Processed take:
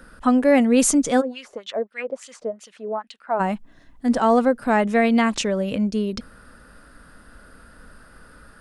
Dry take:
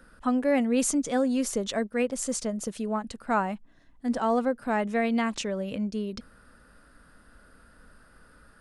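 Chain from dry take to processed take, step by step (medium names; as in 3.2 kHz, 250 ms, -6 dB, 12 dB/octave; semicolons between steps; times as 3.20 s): 1.20–3.39 s: wah-wah 4.5 Hz -> 1.7 Hz 460–3300 Hz, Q 2.7; trim +8 dB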